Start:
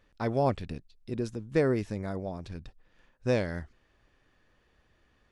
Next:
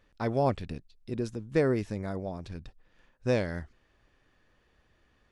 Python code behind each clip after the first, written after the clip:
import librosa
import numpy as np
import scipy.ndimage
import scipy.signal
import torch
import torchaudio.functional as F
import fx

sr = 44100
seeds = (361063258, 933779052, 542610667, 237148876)

y = x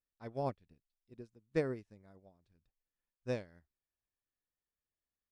y = fx.upward_expand(x, sr, threshold_db=-39.0, expansion=2.5)
y = F.gain(torch.from_numpy(y), -6.0).numpy()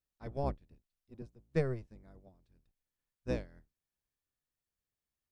y = fx.octave_divider(x, sr, octaves=1, level_db=3.0)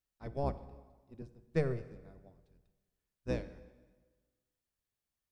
y = fx.rev_plate(x, sr, seeds[0], rt60_s=1.4, hf_ratio=0.85, predelay_ms=0, drr_db=12.5)